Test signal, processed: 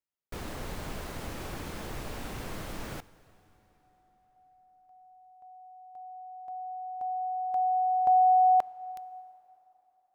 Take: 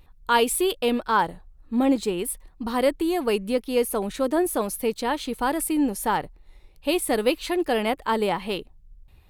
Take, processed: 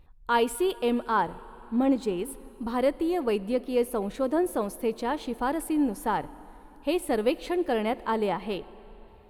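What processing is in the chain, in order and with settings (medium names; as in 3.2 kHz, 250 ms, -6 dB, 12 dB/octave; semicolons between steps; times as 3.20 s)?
treble shelf 2.4 kHz -9 dB; plate-style reverb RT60 4.2 s, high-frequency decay 0.8×, DRR 18 dB; trim -2.5 dB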